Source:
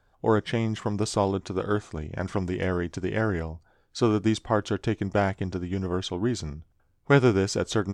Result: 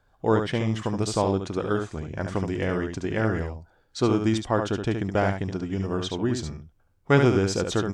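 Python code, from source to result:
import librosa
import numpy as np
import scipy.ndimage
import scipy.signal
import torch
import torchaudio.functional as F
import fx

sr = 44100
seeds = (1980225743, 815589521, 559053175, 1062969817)

y = x + 10.0 ** (-6.0 / 20.0) * np.pad(x, (int(72 * sr / 1000.0), 0))[:len(x)]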